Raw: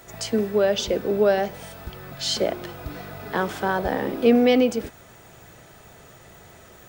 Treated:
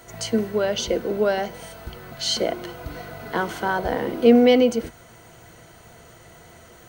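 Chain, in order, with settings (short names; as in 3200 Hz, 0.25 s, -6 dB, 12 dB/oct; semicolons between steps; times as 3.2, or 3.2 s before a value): ripple EQ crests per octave 1.9, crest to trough 7 dB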